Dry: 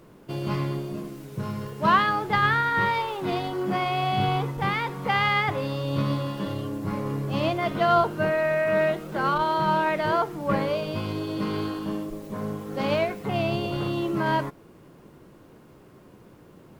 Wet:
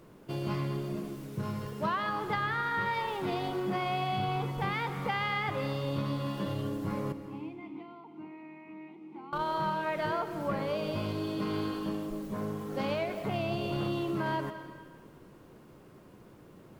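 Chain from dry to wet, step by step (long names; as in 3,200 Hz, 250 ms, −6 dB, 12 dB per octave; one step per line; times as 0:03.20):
downward compressor, threshold −25 dBFS, peak gain reduction 10.5 dB
0:07.12–0:09.33: formant filter u
comb and all-pass reverb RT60 1.5 s, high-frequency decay 0.95×, pre-delay 110 ms, DRR 10.5 dB
level −3.5 dB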